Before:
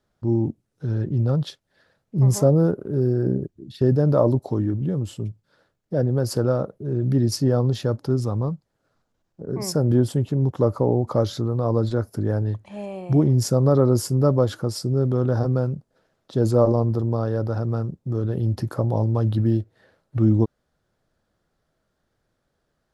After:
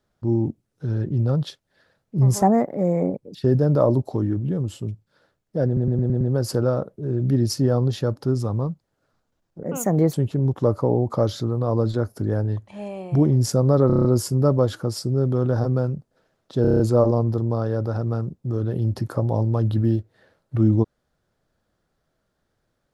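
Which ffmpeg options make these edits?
-filter_complex "[0:a]asplit=22[a][b][c][d][e][f][g][h][i][j][k][l][m][n][o][p][q][r][s][t][u][v];[a]atrim=end=2.424[w];[b]atrim=start=2.42:end=3.72,asetpts=PTS-STARTPTS,asetrate=61740,aresample=44100[x];[c]atrim=start=3.716:end=6.142[y];[d]atrim=start=6.028:end=6.142[z];[e]atrim=start=6.028:end=6.142[aa];[f]atrim=start=6.028:end=6.142[ab];[g]atrim=start=6.028:end=6.142[ac];[h]atrim=start=6.028:end=9.454[ad];[i]atrim=start=9.45:end=10.11,asetpts=PTS-STARTPTS,asetrate=57330,aresample=44100,atrim=end_sample=22389,asetpts=PTS-STARTPTS[ae];[j]atrim=start=10.106:end=13.872[af];[k]atrim=start=13.838:end=13.872[ag];[l]atrim=start=13.838:end=13.872[ah];[m]atrim=start=13.838:end=13.872[ai];[n]atrim=start=13.838:end=13.872[aj];[o]atrim=start=13.838:end=13.872[ak];[p]atrim=start=13.838:end=16.442[al];[q]atrim=start=16.408:end=16.442[am];[r]atrim=start=16.408:end=16.442[an];[s]atrim=start=16.408:end=16.442[ao];[t]atrim=start=16.408:end=16.442[ap];[u]atrim=start=16.408:end=16.442[aq];[v]atrim=start=16.408[ar];[w][x]acrossfade=d=0.004:c1=hsin:c2=hsin[as];[as][y]acrossfade=d=0.004:c1=hsin:c2=hsin[at];[at][z]acrossfade=d=0.004:c1=hsin:c2=hsin[au];[au][aa]acrossfade=d=0.004:c1=hsin:c2=hsin[av];[av][ab]acrossfade=d=0.004:c1=hsin:c2=hsin[aw];[aw][ac]acrossfade=d=0.004:c1=hsin:c2=hsin[ax];[ax][ad]acrossfade=d=0.004:c1=hsin:c2=hsin[ay];[ay][ae]acrossfade=d=0.004:c1=hsin:c2=hsin[az];[az][af]acrossfade=d=0.004:c1=hsin:c2=hsin[ba];[ba][ag]acrossfade=d=0.004:c1=hsin:c2=hsin[bb];[bb][ah]acrossfade=d=0.004:c1=hsin:c2=hsin[bc];[bc][ai]acrossfade=d=0.004:c1=hsin:c2=hsin[bd];[bd][aj]acrossfade=d=0.004:c1=hsin:c2=hsin[be];[be][ak]acrossfade=d=0.004:c1=hsin:c2=hsin[bf];[bf][al]acrossfade=d=0.004:c1=hsin:c2=hsin[bg];[bg][am]acrossfade=d=0.004:c1=hsin:c2=hsin[bh];[bh][an]acrossfade=d=0.004:c1=hsin:c2=hsin[bi];[bi][ao]acrossfade=d=0.004:c1=hsin:c2=hsin[bj];[bj][ap]acrossfade=d=0.004:c1=hsin:c2=hsin[bk];[bk][aq]acrossfade=d=0.004:c1=hsin:c2=hsin[bl];[bl][ar]acrossfade=d=0.004:c1=hsin:c2=hsin"

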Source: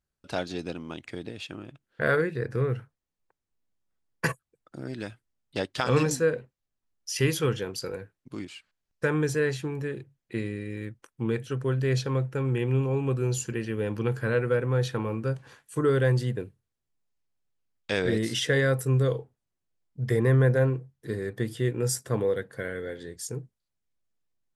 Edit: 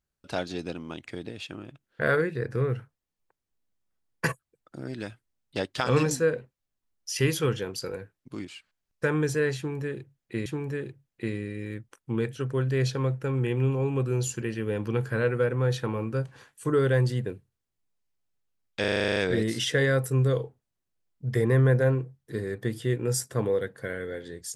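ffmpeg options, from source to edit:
-filter_complex "[0:a]asplit=11[a][b][c][d][e][f][g][h][i][j][k];[a]atrim=end=10.462[l];[b]atrim=start=9.568:end=17.952[m];[c]atrim=start=17.908:end=17.952[n];[d]atrim=start=17.908:end=17.952[o];[e]atrim=start=17.908:end=17.952[p];[f]atrim=start=17.908:end=17.952[q];[g]atrim=start=17.908:end=17.952[r];[h]atrim=start=17.908:end=17.952[s];[i]atrim=start=17.908:end=17.952[t];[j]atrim=start=17.908:end=17.952[u];[k]atrim=start=17.908[v];[l][m]acrossfade=d=0.004:c1=hsin:c2=hsin[w];[w][n]acrossfade=d=0.004:c1=hsin:c2=hsin[x];[x][o]acrossfade=d=0.004:c1=hsin:c2=hsin[y];[y][p]acrossfade=d=0.004:c1=hsin:c2=hsin[z];[z][q]acrossfade=d=0.004:c1=hsin:c2=hsin[aa];[aa][r]acrossfade=d=0.004:c1=hsin:c2=hsin[ab];[ab][s]acrossfade=d=0.004:c1=hsin:c2=hsin[ac];[ac][t]acrossfade=d=0.004:c1=hsin:c2=hsin[ad];[ad][u]acrossfade=d=0.004:c1=hsin:c2=hsin[ae];[ae][v]acrossfade=d=0.004:c1=hsin:c2=hsin"

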